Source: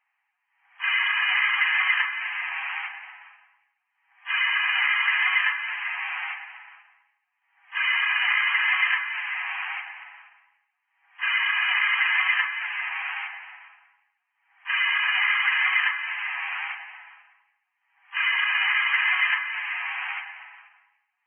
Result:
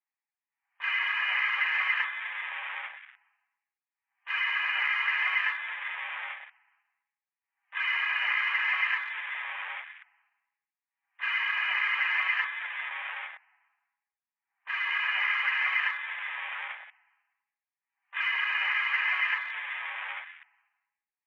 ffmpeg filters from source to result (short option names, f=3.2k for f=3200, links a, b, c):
-filter_complex "[0:a]asettb=1/sr,asplit=3[a][b][c];[a]atrim=end=13.354[d];[b]atrim=start=13.35:end=14.91,asetpts=PTS-STARTPTS,afade=t=in:d=0.004:c=qsin,afade=t=out:st=1.556:d=0.004:c=qsin,aemphasis=mode=reproduction:type=75fm[e];[c]atrim=start=14.906[f];[d][e]acrossfade=d=0.004:c1=hsin:c2=qsin[g];[g][f]acrossfade=d=0.004:c1=qsin:c2=hsin,afwtdn=0.0158,bass=f=250:g=9,treble=f=4k:g=-10,volume=-4.5dB"